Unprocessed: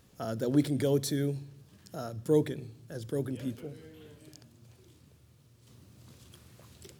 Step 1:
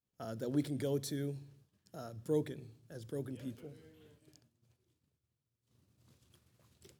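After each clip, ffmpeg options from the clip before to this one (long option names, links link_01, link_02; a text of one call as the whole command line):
ffmpeg -i in.wav -af "agate=range=-33dB:threshold=-48dB:ratio=3:detection=peak,volume=-8dB" out.wav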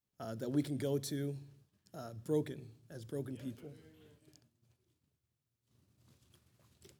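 ffmpeg -i in.wav -af "bandreject=frequency=490:width=15" out.wav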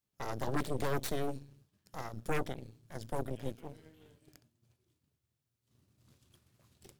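ffmpeg -i in.wav -af "aeval=exprs='0.0794*(cos(1*acos(clip(val(0)/0.0794,-1,1)))-cos(1*PI/2))+0.0398*(cos(8*acos(clip(val(0)/0.0794,-1,1)))-cos(8*PI/2))':channel_layout=same,acompressor=threshold=-38dB:ratio=1.5,volume=1dB" out.wav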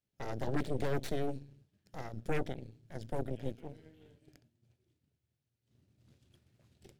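ffmpeg -i in.wav -af "lowpass=frequency=3000:poles=1,equalizer=frequency=1100:width_type=o:width=0.62:gain=-9,volume=1dB" out.wav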